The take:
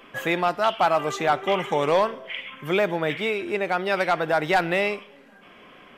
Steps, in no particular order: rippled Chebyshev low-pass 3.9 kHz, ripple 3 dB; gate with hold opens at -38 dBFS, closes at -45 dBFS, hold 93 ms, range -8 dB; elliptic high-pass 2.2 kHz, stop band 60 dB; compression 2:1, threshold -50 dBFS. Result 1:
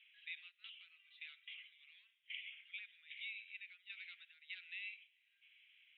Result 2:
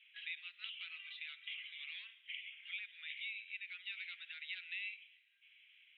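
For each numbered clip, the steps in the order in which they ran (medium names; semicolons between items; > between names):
compression > elliptic high-pass > gate with hold > rippled Chebyshev low-pass; elliptic high-pass > gate with hold > compression > rippled Chebyshev low-pass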